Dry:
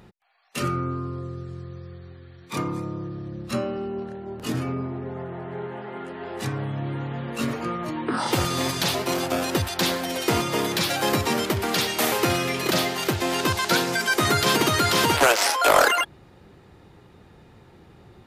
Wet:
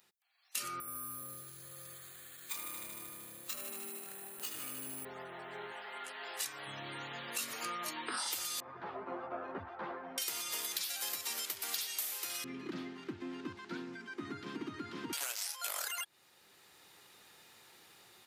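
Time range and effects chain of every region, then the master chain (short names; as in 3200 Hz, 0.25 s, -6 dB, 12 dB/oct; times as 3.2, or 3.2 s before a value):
0.8–5.05 compressor 4:1, threshold -35 dBFS + dark delay 76 ms, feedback 80%, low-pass 3900 Hz, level -5 dB + careless resampling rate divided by 4×, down filtered, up hold
5.72–6.67 low shelf 260 Hz -11 dB + notches 50/100/150/200/250/300/350/400/450 Hz
8.6–10.18 LPF 1300 Hz 24 dB/oct + low shelf 480 Hz +5.5 dB + ensemble effect
12.44–15.13 LPF 1300 Hz + resonant low shelf 410 Hz +13 dB, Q 3
whole clip: AGC; differentiator; compressor 10:1, threshold -33 dBFS; gain -2 dB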